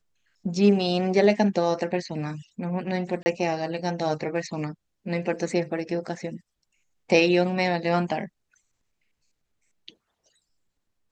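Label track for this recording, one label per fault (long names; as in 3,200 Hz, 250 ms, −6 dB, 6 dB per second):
3.230000	3.260000	drop-out 30 ms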